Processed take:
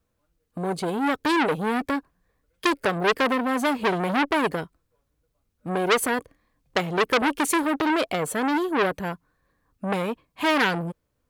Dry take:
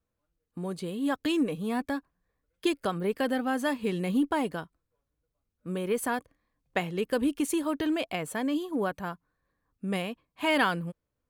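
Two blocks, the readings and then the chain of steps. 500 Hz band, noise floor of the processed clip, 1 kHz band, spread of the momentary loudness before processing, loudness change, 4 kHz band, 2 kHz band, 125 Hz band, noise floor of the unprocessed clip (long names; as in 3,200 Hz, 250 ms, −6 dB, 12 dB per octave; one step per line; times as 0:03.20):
+6.0 dB, −75 dBFS, +9.0 dB, 11 LU, +6.0 dB, +7.0 dB, +8.5 dB, +4.0 dB, −83 dBFS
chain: dynamic equaliser 430 Hz, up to +7 dB, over −45 dBFS, Q 2.3
saturating transformer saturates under 2,900 Hz
level +8.5 dB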